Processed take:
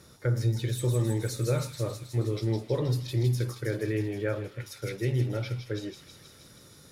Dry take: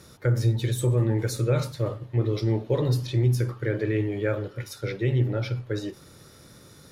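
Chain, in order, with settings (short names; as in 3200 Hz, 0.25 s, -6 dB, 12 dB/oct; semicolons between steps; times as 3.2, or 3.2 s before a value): thin delay 0.159 s, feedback 73%, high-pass 3600 Hz, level -3 dB; gain -4 dB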